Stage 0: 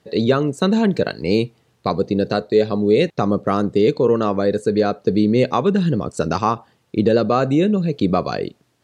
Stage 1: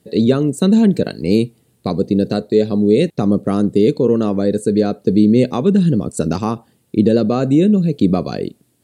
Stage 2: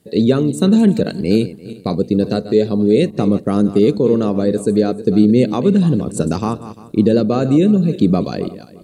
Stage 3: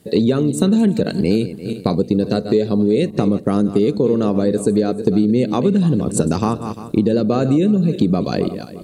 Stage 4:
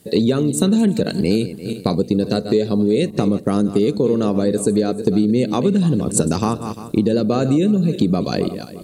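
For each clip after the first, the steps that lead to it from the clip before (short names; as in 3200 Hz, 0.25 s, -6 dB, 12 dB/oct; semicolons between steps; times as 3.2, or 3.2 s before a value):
EQ curve 120 Hz 0 dB, 240 Hz +4 dB, 1100 Hz -10 dB, 4000 Hz -3 dB, 6000 Hz -4 dB, 8800 Hz +9 dB; gain +2.5 dB
regenerating reverse delay 0.173 s, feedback 44%, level -13 dB
compressor 4:1, threshold -20 dBFS, peak gain reduction 12 dB; gain +6.5 dB
high shelf 4200 Hz +7 dB; gain -1 dB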